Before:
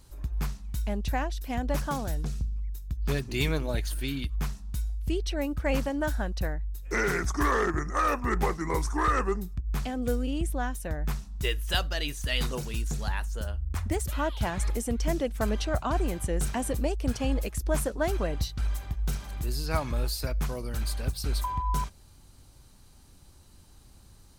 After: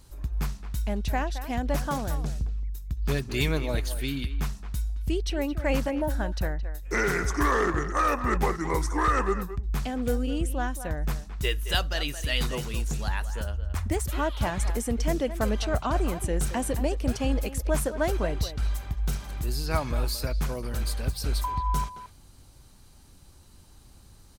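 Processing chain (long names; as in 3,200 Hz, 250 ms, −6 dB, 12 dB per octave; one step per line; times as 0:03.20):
gain on a spectral selection 0:05.90–0:06.10, 940–8,800 Hz −17 dB
far-end echo of a speakerphone 220 ms, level −11 dB
level +1.5 dB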